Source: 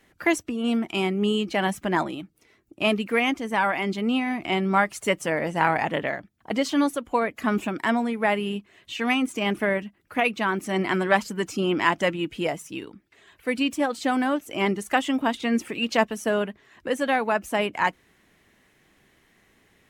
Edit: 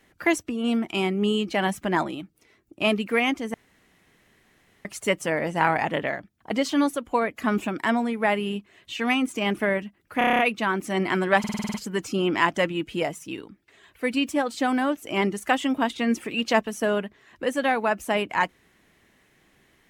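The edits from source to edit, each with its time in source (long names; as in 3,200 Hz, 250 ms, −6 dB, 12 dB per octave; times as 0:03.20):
0:03.54–0:04.85: fill with room tone
0:10.18: stutter 0.03 s, 8 plays
0:11.18: stutter 0.05 s, 8 plays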